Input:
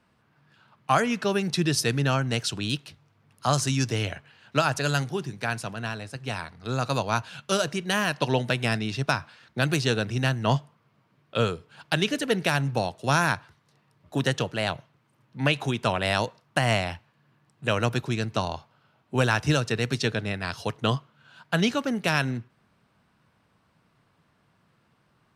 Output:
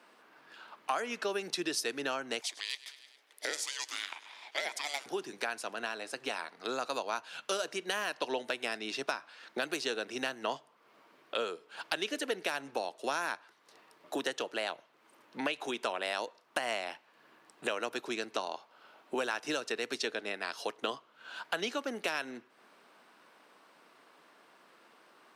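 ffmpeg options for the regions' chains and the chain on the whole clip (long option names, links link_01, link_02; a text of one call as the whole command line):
ffmpeg -i in.wav -filter_complex "[0:a]asettb=1/sr,asplit=3[link_01][link_02][link_03];[link_01]atrim=end=2.414[link_04];[link_02]atrim=start=2.41:end=5.06,asetpts=PTS-STARTPTS,afade=type=in:duration=0.004:curve=qsin,afade=type=out:start_time=2.646:duration=0.004:curve=qsin,highpass=1200,aecho=1:1:103|206|309|412:0.1|0.054|0.0292|0.0157,atrim=end_sample=116865,aeval=exprs='val(0)*sin(2*PI*720*n/s)':channel_layout=same[link_05];[link_03]atrim=start=5.056[link_06];[link_04][link_05]acrossfade=duration=0.004:curve1=hsin:curve2=qsin[link_07];[link_07][link_06]acrossfade=duration=0.004:curve1=qsin:curve2=hsin,highpass=frequency=310:width=0.5412,highpass=frequency=310:width=1.3066,acompressor=threshold=-45dB:ratio=3,volume=8dB" out.wav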